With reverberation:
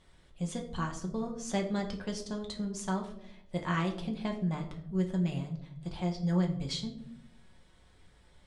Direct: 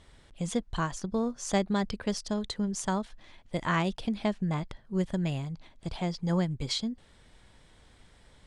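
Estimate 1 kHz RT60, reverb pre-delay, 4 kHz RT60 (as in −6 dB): 0.65 s, 5 ms, 0.40 s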